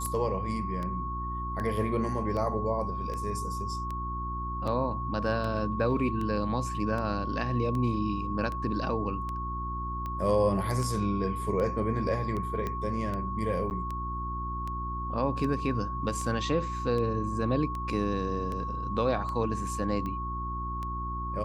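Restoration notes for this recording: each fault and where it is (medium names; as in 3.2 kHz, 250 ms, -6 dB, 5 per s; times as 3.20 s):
hum 60 Hz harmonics 6 -36 dBFS
tick 78 rpm -24 dBFS
whine 1.1 kHz -34 dBFS
12.67 s: pop -20 dBFS
13.70–13.71 s: dropout 9.6 ms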